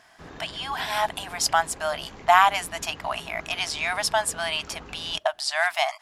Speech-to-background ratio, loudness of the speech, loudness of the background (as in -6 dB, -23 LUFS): 19.0 dB, -25.0 LUFS, -44.0 LUFS